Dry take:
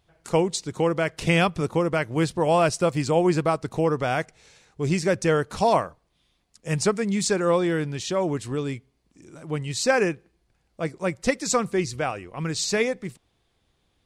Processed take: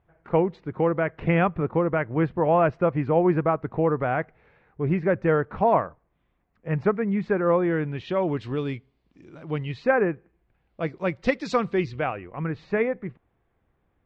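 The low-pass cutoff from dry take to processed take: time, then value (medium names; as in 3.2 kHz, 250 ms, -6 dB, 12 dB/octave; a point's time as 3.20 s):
low-pass 24 dB/octave
7.61 s 2 kHz
8.46 s 3.9 kHz
9.58 s 3.9 kHz
10.00 s 1.7 kHz
10.94 s 3.9 kHz
11.70 s 3.9 kHz
12.46 s 2 kHz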